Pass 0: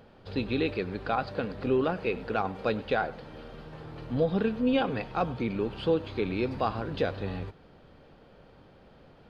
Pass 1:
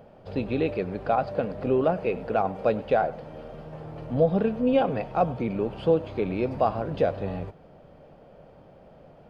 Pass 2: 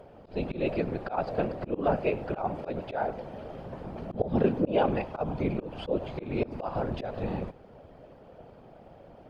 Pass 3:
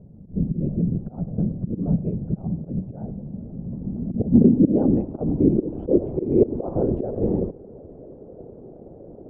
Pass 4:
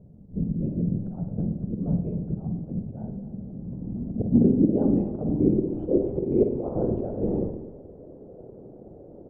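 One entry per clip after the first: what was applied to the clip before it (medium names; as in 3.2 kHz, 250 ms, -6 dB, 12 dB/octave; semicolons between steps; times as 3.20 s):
fifteen-band graphic EQ 160 Hz +5 dB, 630 Hz +10 dB, 1.6 kHz -3 dB, 4 kHz -8 dB
whisper effect; slow attack 174 ms
low-pass sweep 180 Hz -> 390 Hz, 3.03–6.28 s; trim +7.5 dB
delay 253 ms -14.5 dB; reverberation RT60 0.65 s, pre-delay 46 ms, DRR 5.5 dB; trim -4.5 dB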